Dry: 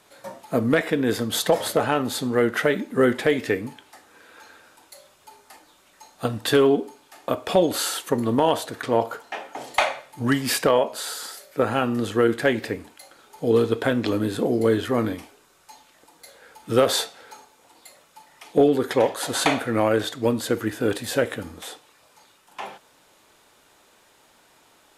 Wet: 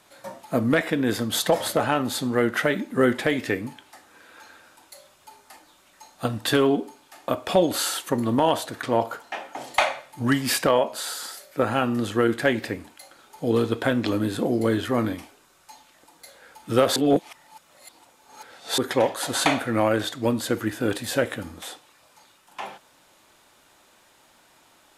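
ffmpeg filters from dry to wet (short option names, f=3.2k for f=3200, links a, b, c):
-filter_complex "[0:a]asplit=3[a][b][c];[a]atrim=end=16.962[d];[b]atrim=start=16.958:end=18.782,asetpts=PTS-STARTPTS,areverse[e];[c]atrim=start=18.778[f];[d][e]acrossfade=d=0.004:c1=hsin:c2=hsin[g];[g][f]acrossfade=d=0.004:c1=hsin:c2=hsin,equalizer=f=440:t=o:w=0.21:g=-7"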